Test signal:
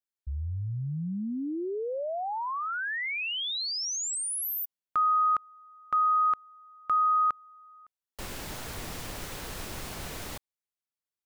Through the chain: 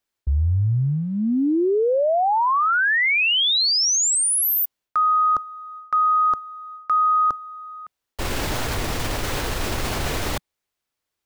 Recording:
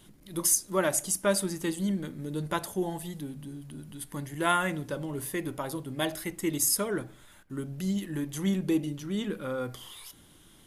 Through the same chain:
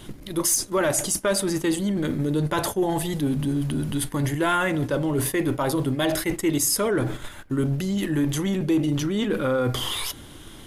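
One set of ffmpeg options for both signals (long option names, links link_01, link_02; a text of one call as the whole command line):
ffmpeg -i in.wav -filter_complex "[0:a]asplit=2[link_01][link_02];[link_02]adynamicsmooth=sensitivity=1:basefreq=7900,volume=-2.5dB[link_03];[link_01][link_03]amix=inputs=2:normalize=0,apsyclip=17.5dB,lowshelf=frequency=420:gain=2.5,areverse,acompressor=threshold=-16dB:ratio=6:attack=0.13:release=205:knee=6:detection=peak,areverse,equalizer=frequency=180:width_type=o:width=0.41:gain=-7.5,agate=range=-7dB:threshold=-28dB:ratio=3:release=55:detection=rms,volume=-1.5dB" out.wav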